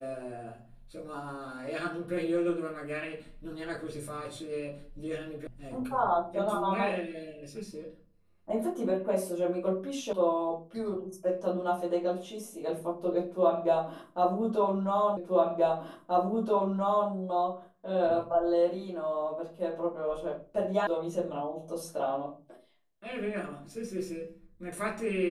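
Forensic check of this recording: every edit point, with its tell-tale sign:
5.47 s: sound stops dead
10.13 s: sound stops dead
15.17 s: repeat of the last 1.93 s
20.87 s: sound stops dead

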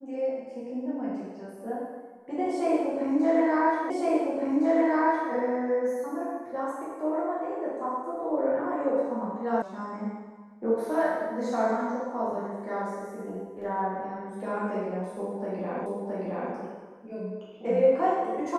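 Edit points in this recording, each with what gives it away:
3.90 s: repeat of the last 1.41 s
9.62 s: sound stops dead
15.86 s: repeat of the last 0.67 s

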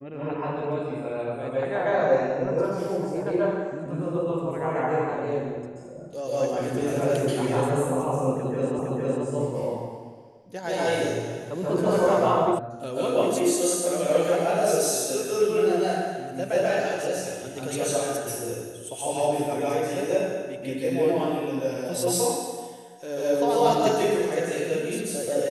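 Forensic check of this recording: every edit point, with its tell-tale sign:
8.79 s: repeat of the last 0.46 s
12.59 s: sound stops dead

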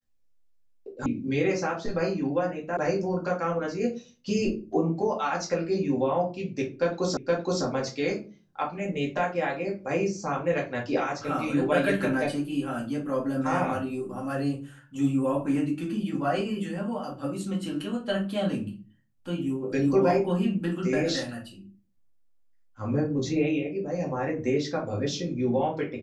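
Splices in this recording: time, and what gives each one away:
1.06 s: sound stops dead
2.77 s: sound stops dead
7.17 s: repeat of the last 0.47 s

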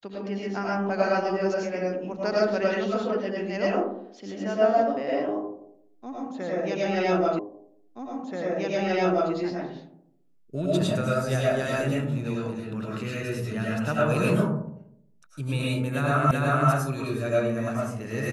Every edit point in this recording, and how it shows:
7.39 s: repeat of the last 1.93 s
16.31 s: repeat of the last 0.38 s

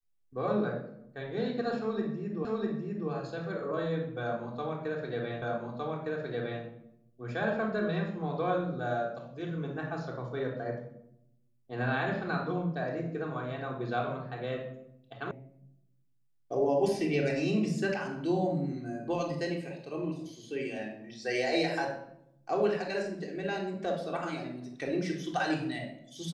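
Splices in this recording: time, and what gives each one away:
2.45 s: repeat of the last 0.65 s
5.42 s: repeat of the last 1.21 s
15.31 s: sound stops dead

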